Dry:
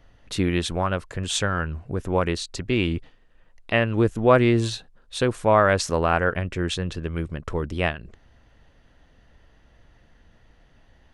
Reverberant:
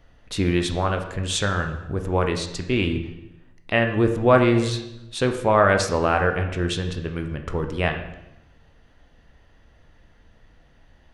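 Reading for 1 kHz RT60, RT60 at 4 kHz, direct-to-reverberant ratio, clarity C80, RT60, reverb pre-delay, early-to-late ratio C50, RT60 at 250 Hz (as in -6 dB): 0.85 s, 0.80 s, 5.0 dB, 10.5 dB, 0.90 s, 13 ms, 8.5 dB, 1.1 s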